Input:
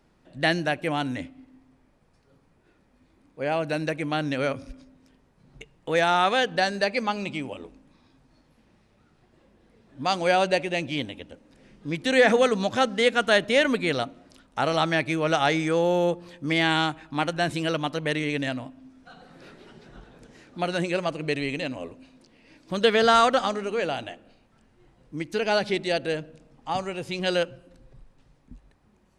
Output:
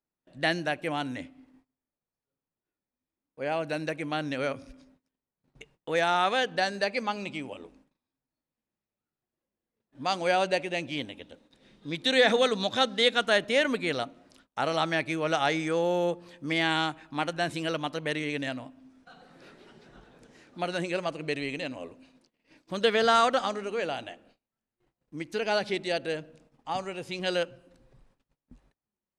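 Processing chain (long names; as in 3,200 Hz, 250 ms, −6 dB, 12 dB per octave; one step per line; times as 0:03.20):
0:11.22–0:13.24: parametric band 3,700 Hz +12.5 dB 0.28 octaves
noise gate −54 dBFS, range −25 dB
low-shelf EQ 140 Hz −7 dB
level −3.5 dB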